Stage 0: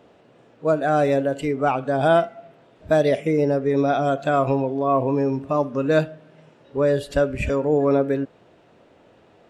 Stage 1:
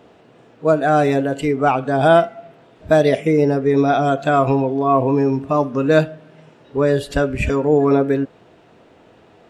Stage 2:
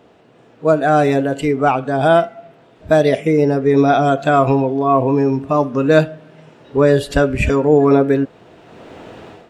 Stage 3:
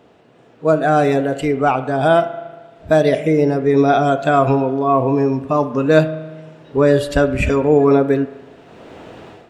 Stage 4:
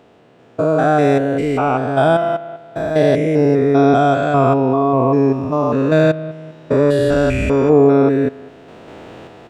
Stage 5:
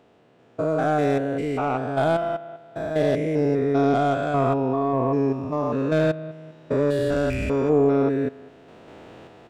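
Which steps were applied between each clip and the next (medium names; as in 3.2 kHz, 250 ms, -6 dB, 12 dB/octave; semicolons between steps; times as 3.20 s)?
band-stop 560 Hz, Q 12; trim +5 dB
level rider gain up to 14.5 dB; trim -1 dB
spring tank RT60 1.3 s, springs 38 ms, chirp 35 ms, DRR 14 dB; trim -1 dB
spectrogram pixelated in time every 200 ms; trim +3 dB
tracing distortion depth 0.043 ms; trim -8 dB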